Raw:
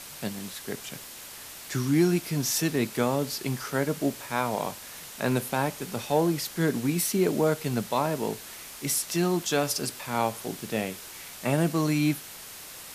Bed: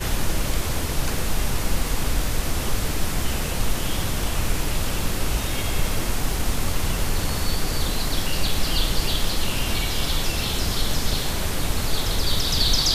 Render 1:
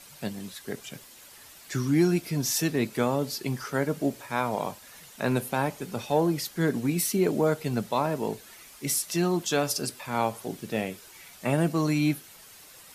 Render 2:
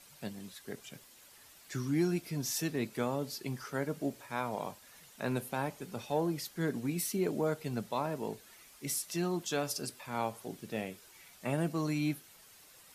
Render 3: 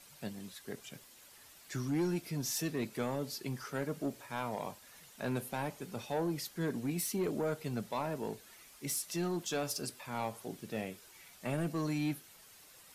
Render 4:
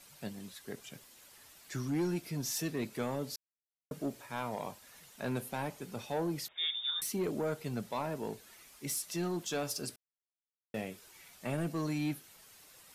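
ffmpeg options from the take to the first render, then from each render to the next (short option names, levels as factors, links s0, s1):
-af "afftdn=nr=9:nf=-43"
-af "volume=0.398"
-af "asoftclip=type=tanh:threshold=0.0473"
-filter_complex "[0:a]asettb=1/sr,asplit=3[s0][s1][s2];[s0]atrim=end=6.484[s3];[s1]atrim=start=6.48:end=7.02,asetpts=PTS-STARTPTS,afade=t=in:d=0.004:c=qsin,afade=t=out:st=0.536:d=0.004:c=qsin,lowpass=f=3200:t=q:w=0.5098,lowpass=f=3200:t=q:w=0.6013,lowpass=f=3200:t=q:w=0.9,lowpass=f=3200:t=q:w=2.563,afreqshift=-3800[s4];[s2]atrim=start=7.016[s5];[s3][s4]acrossfade=d=0.004:c1=hsin:c2=qsin[s6];[s6][s5]acrossfade=d=0.004:c1=qsin:c2=hsin,asplit=5[s7][s8][s9][s10][s11];[s7]atrim=end=3.36,asetpts=PTS-STARTPTS,afade=t=out:st=3.356:d=0.004:c=hsin[s12];[s8]atrim=start=3.36:end=3.91,asetpts=PTS-STARTPTS,volume=0[s13];[s9]atrim=start=3.91:end=9.96,asetpts=PTS-STARTPTS,afade=t=in:d=0.004:c=hsin,afade=t=out:st=6.046:d=0.004:c=hsin[s14];[s10]atrim=start=9.96:end=10.74,asetpts=PTS-STARTPTS,volume=0[s15];[s11]atrim=start=10.74,asetpts=PTS-STARTPTS,afade=t=in:d=0.004:c=hsin[s16];[s12][s13][s14][s15][s16]concat=n=5:v=0:a=1"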